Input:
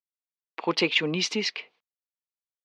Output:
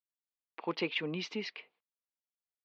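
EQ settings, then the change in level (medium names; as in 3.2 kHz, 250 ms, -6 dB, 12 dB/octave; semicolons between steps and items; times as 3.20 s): distance through air 190 m; -8.5 dB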